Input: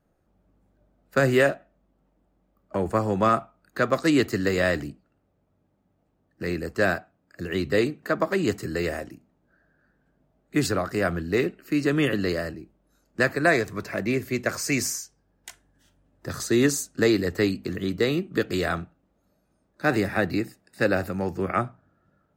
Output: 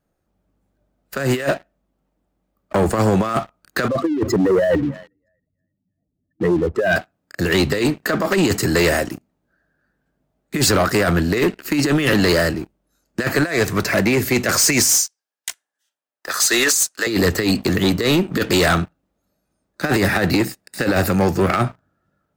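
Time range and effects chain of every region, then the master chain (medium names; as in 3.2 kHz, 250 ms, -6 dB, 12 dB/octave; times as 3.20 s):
3.88–6.96 s: spectral contrast enhancement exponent 2.7 + hum notches 50/100/150/200 Hz + thinning echo 322 ms, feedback 28%, high-pass 990 Hz, level -21.5 dB
14.91–17.07 s: high-pass 810 Hz + three bands expanded up and down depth 40%
whole clip: treble shelf 2.3 kHz +6.5 dB; compressor with a negative ratio -24 dBFS, ratio -0.5; waveshaping leveller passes 3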